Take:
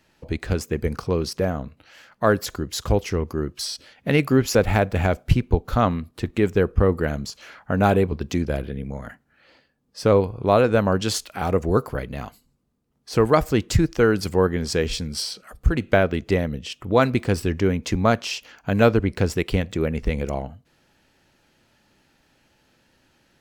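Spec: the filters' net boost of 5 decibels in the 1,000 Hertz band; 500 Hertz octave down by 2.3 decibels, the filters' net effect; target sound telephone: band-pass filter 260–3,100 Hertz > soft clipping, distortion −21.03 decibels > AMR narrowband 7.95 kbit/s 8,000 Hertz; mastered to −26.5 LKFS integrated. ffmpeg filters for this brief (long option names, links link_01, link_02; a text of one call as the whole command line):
ffmpeg -i in.wav -af "highpass=260,lowpass=3100,equalizer=frequency=500:width_type=o:gain=-4.5,equalizer=frequency=1000:width_type=o:gain=8.5,asoftclip=threshold=-3.5dB,volume=-1.5dB" -ar 8000 -c:a libopencore_amrnb -b:a 7950 out.amr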